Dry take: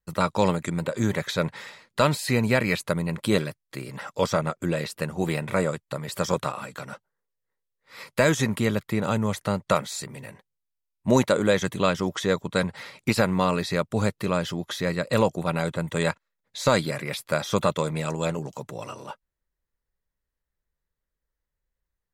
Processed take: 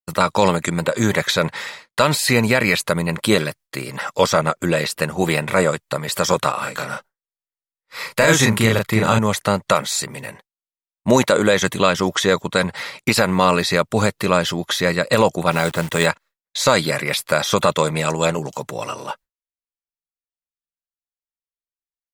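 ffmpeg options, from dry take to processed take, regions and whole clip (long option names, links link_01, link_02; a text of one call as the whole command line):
ffmpeg -i in.wav -filter_complex "[0:a]asettb=1/sr,asplit=3[link_01][link_02][link_03];[link_01]atrim=end=6.584[link_04];[link_02]atrim=start=6.58:end=9.19,asetpts=PTS-STARTPTS,afade=type=in:duration=0.004:curve=qsin,afade=type=out:start_time=2.606:duration=0.004:curve=qsin,asubboost=boost=2:cutoff=150,asplit=2[link_05][link_06];[link_06]adelay=36,volume=-3.5dB[link_07];[link_05][link_07]amix=inputs=2:normalize=0,atrim=end_sample=115101[link_08];[link_03]atrim=start=9.186[link_09];[link_04][link_08]acrossfade=duration=0.004:curve1=hsin:curve2=qsin[link_10];[link_10][link_09]acrossfade=duration=0.004:curve1=qsin:curve2=hsin,asettb=1/sr,asplit=3[link_11][link_12][link_13];[link_11]atrim=end=15.514[link_14];[link_12]atrim=start=15.51:end=16.06,asetpts=PTS-STARTPTS,afade=type=in:duration=0.004:curve=qsin,afade=type=out:start_time=0.546:duration=0.004:curve=qsin,bandreject=frequency=550:width=18,acrusher=bits=8:dc=4:mix=0:aa=0.000001[link_15];[link_13]atrim=start=16.056[link_16];[link_14][link_15]acrossfade=duration=0.004:curve1=hsin:curve2=qsin[link_17];[link_17][link_16]acrossfade=duration=0.004:curve1=qsin:curve2=hsin,agate=range=-33dB:threshold=-45dB:ratio=3:detection=peak,lowshelf=frequency=420:gain=-7.5,alimiter=level_in=12.5dB:limit=-1dB:release=50:level=0:latency=1,volume=-1dB" out.wav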